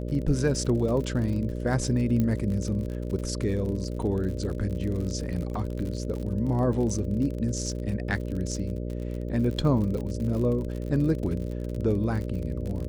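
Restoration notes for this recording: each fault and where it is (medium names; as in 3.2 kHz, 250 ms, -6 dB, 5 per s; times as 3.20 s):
buzz 60 Hz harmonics 10 -32 dBFS
crackle 51 per s -33 dBFS
2.20 s: pop -15 dBFS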